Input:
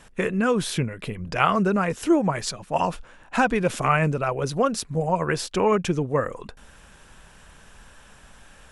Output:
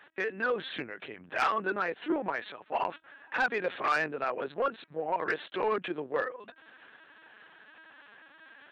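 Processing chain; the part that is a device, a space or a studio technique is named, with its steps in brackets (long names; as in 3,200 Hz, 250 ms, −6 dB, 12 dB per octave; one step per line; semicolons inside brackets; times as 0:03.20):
talking toy (linear-prediction vocoder at 8 kHz pitch kept; high-pass filter 360 Hz 12 dB per octave; parametric band 1,700 Hz +7 dB 0.45 octaves; soft clipping −14 dBFS, distortion −15 dB)
level −5.5 dB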